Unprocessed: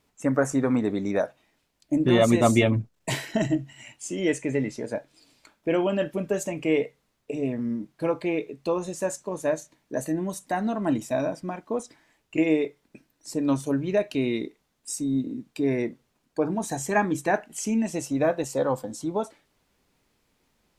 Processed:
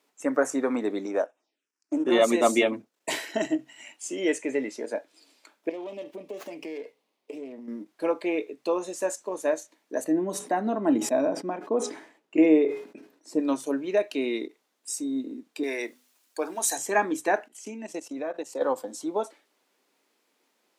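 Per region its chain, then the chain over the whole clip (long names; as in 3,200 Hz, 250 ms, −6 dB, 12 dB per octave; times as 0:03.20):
0:01.06–0:02.12: mu-law and A-law mismatch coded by A + phaser swept by the level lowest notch 530 Hz, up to 4,600 Hz, full sweep at −28.5 dBFS + loudspeaker in its box 140–8,400 Hz, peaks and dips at 200 Hz −4 dB, 2,000 Hz −6 dB, 5,400 Hz +8 dB
0:05.69–0:07.68: downward compressor 5 to 1, threshold −33 dBFS + Butterworth band-reject 1,500 Hz, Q 1.6 + windowed peak hold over 5 samples
0:10.04–0:13.40: spectral tilt −3 dB per octave + hum removal 417.4 Hz, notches 23 + level that may fall only so fast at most 96 dB per second
0:15.63–0:16.78: spectral tilt +4 dB per octave + mains-hum notches 50/100/150/200/250 Hz
0:17.48–0:18.61: high-shelf EQ 11,000 Hz −7 dB + output level in coarse steps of 15 dB
whole clip: high-pass filter 280 Hz 24 dB per octave; every ending faded ahead of time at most 520 dB per second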